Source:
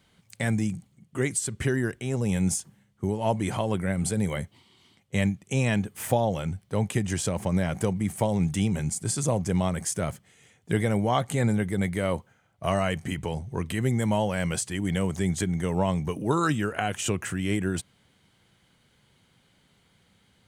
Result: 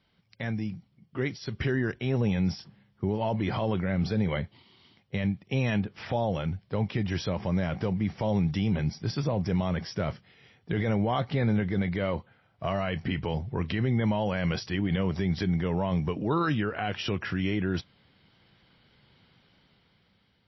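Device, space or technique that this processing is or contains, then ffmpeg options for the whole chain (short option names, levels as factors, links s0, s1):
low-bitrate web radio: -af "dynaudnorm=f=370:g=7:m=2.82,alimiter=limit=0.266:level=0:latency=1:release=23,volume=0.501" -ar 16000 -c:a libmp3lame -b:a 24k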